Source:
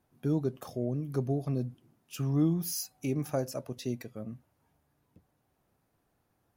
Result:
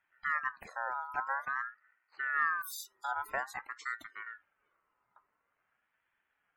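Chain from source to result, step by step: 1.49–2.60 s: median filter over 25 samples; loudest bins only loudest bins 64; ring modulator with a swept carrier 1.4 kHz, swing 20%, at 0.49 Hz; trim -2 dB

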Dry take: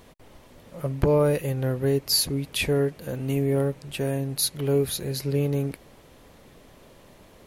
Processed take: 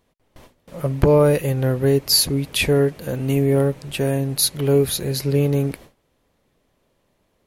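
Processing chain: gate with hold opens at -38 dBFS; trim +6 dB

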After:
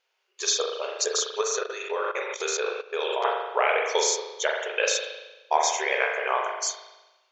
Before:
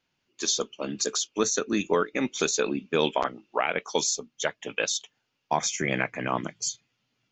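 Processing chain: spring tank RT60 1.1 s, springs 38 ms, chirp 55 ms, DRR 0 dB; 1.41–3.25 s: level held to a coarse grid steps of 14 dB; brick-wall FIR high-pass 370 Hz; trim +1.5 dB

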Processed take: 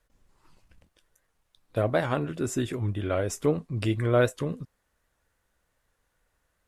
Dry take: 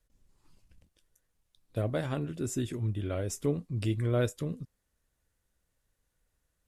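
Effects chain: peaking EQ 1.1 kHz +9.5 dB 2.8 oct; warped record 78 rpm, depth 100 cents; trim +1.5 dB

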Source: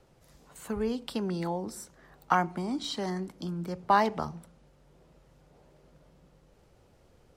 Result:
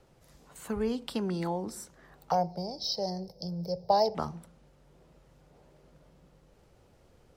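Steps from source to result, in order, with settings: 2.31–4.15 s: FFT filter 170 Hz 0 dB, 280 Hz -19 dB, 520 Hz +9 dB, 830 Hz -1 dB, 1.2 kHz -22 dB, 2.3 kHz -17 dB, 3.2 kHz -14 dB, 5.2 kHz +15 dB, 7.5 kHz -24 dB, 15 kHz +7 dB

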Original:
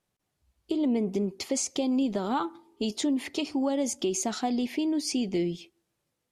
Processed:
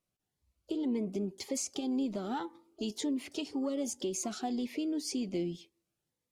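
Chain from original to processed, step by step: harmony voices +7 st -16 dB; Shepard-style phaser rising 1.9 Hz; trim -6 dB

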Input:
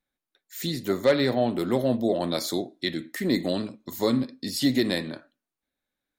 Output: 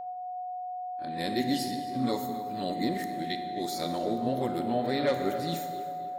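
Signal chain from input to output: reverse the whole clip; gate -52 dBFS, range -22 dB; on a send: tape echo 267 ms, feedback 57%, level -11.5 dB, low-pass 2.6 kHz; on the sum: whistle 730 Hz -29 dBFS; plate-style reverb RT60 2.1 s, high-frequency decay 0.65×, DRR 6 dB; trim -7 dB

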